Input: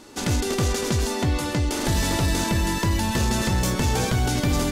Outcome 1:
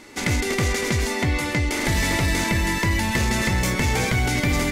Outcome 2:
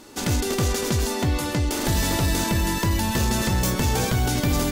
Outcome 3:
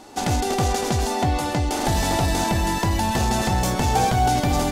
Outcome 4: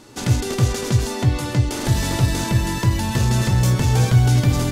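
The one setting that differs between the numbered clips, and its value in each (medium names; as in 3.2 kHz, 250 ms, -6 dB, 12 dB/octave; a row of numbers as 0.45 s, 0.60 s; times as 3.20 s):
peaking EQ, frequency: 2.1 kHz, 16 kHz, 760 Hz, 120 Hz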